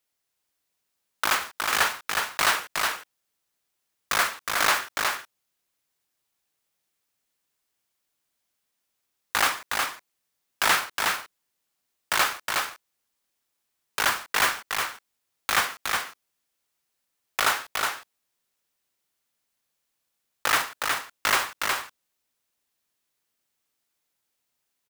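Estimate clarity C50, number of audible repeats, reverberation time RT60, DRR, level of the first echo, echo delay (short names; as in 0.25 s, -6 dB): none, 1, none, none, -4.0 dB, 0.365 s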